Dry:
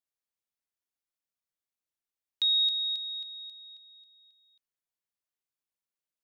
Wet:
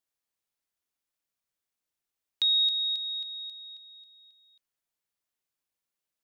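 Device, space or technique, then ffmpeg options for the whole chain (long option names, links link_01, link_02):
parallel compression: -filter_complex "[0:a]asplit=2[link_01][link_02];[link_02]acompressor=threshold=-38dB:ratio=6,volume=-4.5dB[link_03];[link_01][link_03]amix=inputs=2:normalize=0"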